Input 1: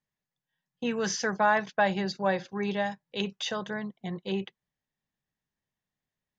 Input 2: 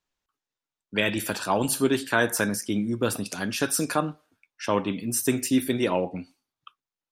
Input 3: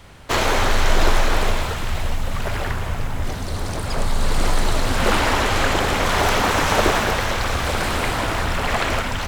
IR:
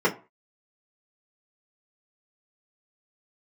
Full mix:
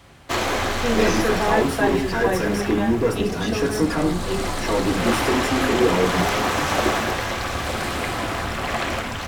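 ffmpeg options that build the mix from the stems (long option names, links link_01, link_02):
-filter_complex "[0:a]volume=-0.5dB,asplit=2[link_01][link_02];[link_02]volume=-13dB[link_03];[1:a]asoftclip=type=hard:threshold=-26.5dB,volume=-4.5dB,asplit=2[link_04][link_05];[link_05]volume=-4.5dB[link_06];[2:a]highpass=frequency=81:poles=1,volume=-3dB,asplit=2[link_07][link_08];[link_08]volume=-22.5dB[link_09];[3:a]atrim=start_sample=2205[link_10];[link_03][link_06][link_09]amix=inputs=3:normalize=0[link_11];[link_11][link_10]afir=irnorm=-1:irlink=0[link_12];[link_01][link_04][link_07][link_12]amix=inputs=4:normalize=0"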